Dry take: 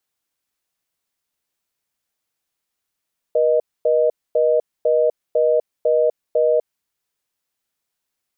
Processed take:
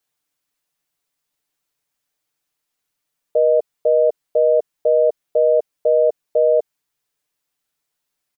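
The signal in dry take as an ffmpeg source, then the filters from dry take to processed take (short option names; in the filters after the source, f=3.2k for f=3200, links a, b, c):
-f lavfi -i "aevalsrc='0.158*(sin(2*PI*480*t)+sin(2*PI*620*t))*clip(min(mod(t,0.5),0.25-mod(t,0.5))/0.005,0,1)':d=3.33:s=44100"
-af "aecho=1:1:6.8:0.65"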